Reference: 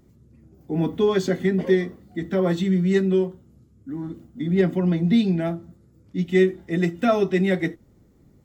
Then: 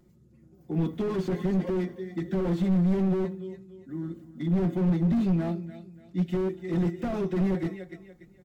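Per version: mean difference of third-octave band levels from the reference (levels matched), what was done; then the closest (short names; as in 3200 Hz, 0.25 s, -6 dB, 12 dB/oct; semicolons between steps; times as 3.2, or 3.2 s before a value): 4.0 dB: comb 5.6 ms, depth 61%; on a send: feedback echo 0.29 s, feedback 32%, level -17 dB; on the sum: slew limiter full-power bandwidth 35 Hz; gain -5.5 dB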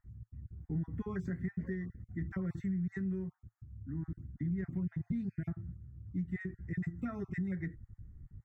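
7.5 dB: random spectral dropouts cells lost 23%; EQ curve 110 Hz 0 dB, 210 Hz -13 dB, 580 Hz -26 dB, 1800 Hz -5 dB, 3200 Hz -30 dB, 6400 Hz -14 dB; compressor, threshold -39 dBFS, peak gain reduction 10.5 dB; tilt -2.5 dB/oct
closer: first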